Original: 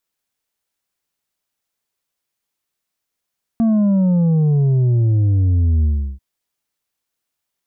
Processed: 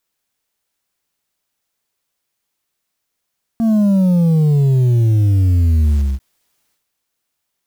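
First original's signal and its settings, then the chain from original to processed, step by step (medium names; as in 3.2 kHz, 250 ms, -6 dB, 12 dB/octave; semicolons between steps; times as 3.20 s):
sub drop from 230 Hz, over 2.59 s, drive 5 dB, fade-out 0.35 s, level -12.5 dB
block-companded coder 5-bit; in parallel at -3 dB: peak limiter -21.5 dBFS; on the sum: transient shaper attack -4 dB, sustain +9 dB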